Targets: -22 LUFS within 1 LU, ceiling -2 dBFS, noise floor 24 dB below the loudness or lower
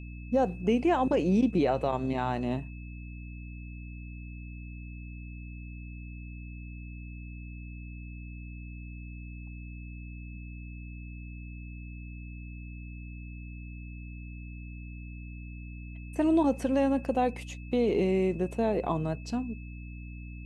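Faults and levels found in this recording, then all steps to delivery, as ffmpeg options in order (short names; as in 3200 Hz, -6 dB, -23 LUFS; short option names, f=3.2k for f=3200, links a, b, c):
hum 60 Hz; harmonics up to 300 Hz; hum level -39 dBFS; steady tone 2600 Hz; tone level -52 dBFS; loudness -28.5 LUFS; peak -15.0 dBFS; loudness target -22.0 LUFS
-> -af "bandreject=f=60:t=h:w=6,bandreject=f=120:t=h:w=6,bandreject=f=180:t=h:w=6,bandreject=f=240:t=h:w=6,bandreject=f=300:t=h:w=6"
-af "bandreject=f=2.6k:w=30"
-af "volume=6.5dB"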